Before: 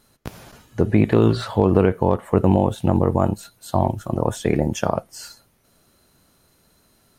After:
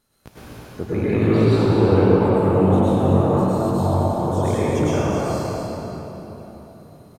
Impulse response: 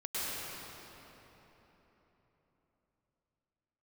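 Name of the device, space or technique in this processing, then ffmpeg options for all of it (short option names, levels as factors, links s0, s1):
cave: -filter_complex "[0:a]aecho=1:1:247:0.355[s0];[1:a]atrim=start_sample=2205[s1];[s0][s1]afir=irnorm=-1:irlink=0,volume=0.562"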